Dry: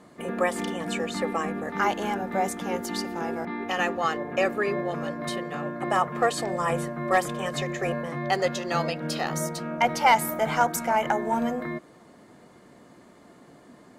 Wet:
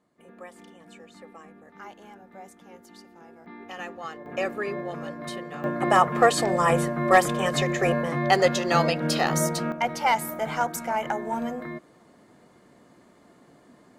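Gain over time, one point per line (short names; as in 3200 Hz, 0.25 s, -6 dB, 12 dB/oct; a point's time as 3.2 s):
-19 dB
from 3.46 s -11 dB
from 4.26 s -4 dB
from 5.64 s +5 dB
from 9.72 s -3.5 dB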